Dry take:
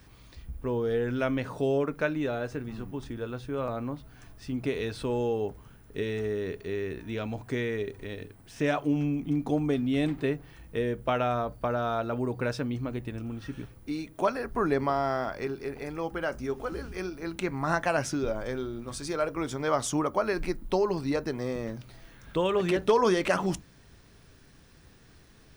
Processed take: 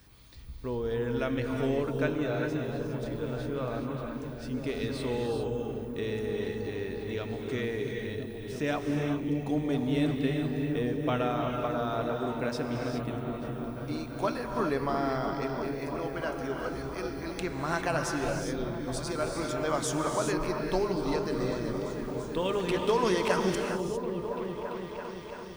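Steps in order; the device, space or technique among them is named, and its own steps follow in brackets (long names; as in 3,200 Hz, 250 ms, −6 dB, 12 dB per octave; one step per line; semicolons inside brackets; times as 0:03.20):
0:13.16–0:13.64: parametric band 3,700 Hz −9 dB 2.6 octaves
presence and air boost (parametric band 4,100 Hz +3.5 dB 0.77 octaves; high-shelf EQ 9,300 Hz +6.5 dB)
echo whose low-pass opens from repeat to repeat 337 ms, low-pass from 200 Hz, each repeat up 1 octave, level −3 dB
reverb whose tail is shaped and stops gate 430 ms rising, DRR 3 dB
level −4 dB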